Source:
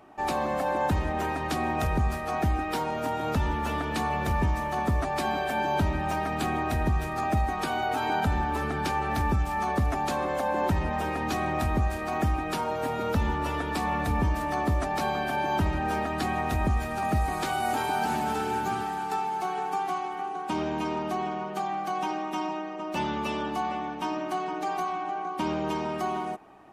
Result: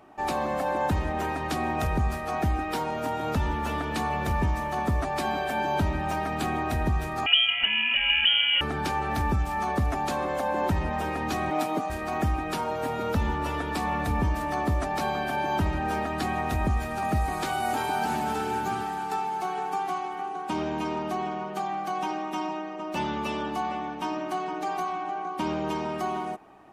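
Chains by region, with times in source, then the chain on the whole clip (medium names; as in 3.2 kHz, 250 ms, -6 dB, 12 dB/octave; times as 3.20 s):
7.26–8.61 s: peaking EQ 300 Hz +12.5 dB 0.92 oct + frequency inversion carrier 3.2 kHz
11.50–11.90 s: high-pass 220 Hz 24 dB/octave + comb 6.7 ms, depth 87%
whole clip: none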